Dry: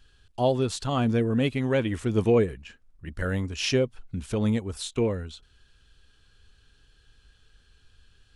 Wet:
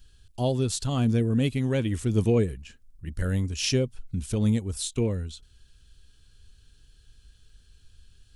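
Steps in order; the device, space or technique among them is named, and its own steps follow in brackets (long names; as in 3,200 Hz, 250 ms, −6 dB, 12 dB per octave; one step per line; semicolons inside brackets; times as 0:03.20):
smiley-face EQ (low-shelf EQ 190 Hz +5 dB; parametric band 1,100 Hz −7.5 dB 2.9 octaves; high-shelf EQ 5,500 Hz +9 dB)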